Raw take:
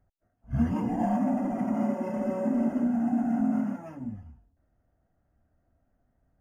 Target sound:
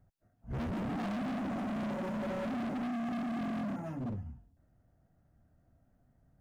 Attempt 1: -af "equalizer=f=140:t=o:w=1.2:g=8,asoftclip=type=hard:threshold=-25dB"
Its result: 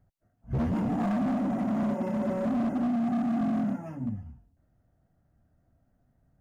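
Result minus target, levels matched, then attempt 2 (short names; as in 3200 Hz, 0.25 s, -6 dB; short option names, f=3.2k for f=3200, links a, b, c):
hard clip: distortion -5 dB
-af "equalizer=f=140:t=o:w=1.2:g=8,asoftclip=type=hard:threshold=-34.5dB"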